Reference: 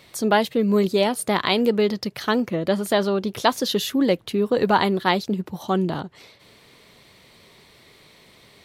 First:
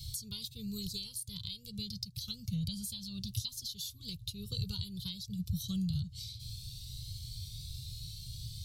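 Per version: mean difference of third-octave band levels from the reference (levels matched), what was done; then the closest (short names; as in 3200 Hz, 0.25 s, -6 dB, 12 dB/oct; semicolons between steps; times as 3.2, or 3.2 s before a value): 16.5 dB: elliptic band-stop 120–4100 Hz, stop band 40 dB; compressor 8:1, threshold -48 dBFS, peak gain reduction 22.5 dB; low shelf 320 Hz +10.5 dB; cascading flanger rising 0.28 Hz; gain +13 dB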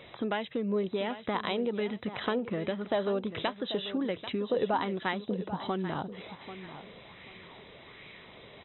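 9.0 dB: compressor 5:1, threshold -31 dBFS, peak gain reduction 16 dB; brick-wall FIR low-pass 4000 Hz; feedback echo 0.789 s, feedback 25%, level -12.5 dB; LFO bell 1.3 Hz 490–2400 Hz +7 dB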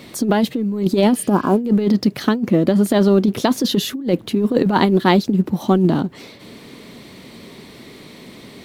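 5.0 dB: G.711 law mismatch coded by mu; spectral repair 1.18–1.58, 1700–6100 Hz both; bell 250 Hz +13.5 dB 1.3 oct; negative-ratio compressor -13 dBFS, ratio -0.5; gain -1 dB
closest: third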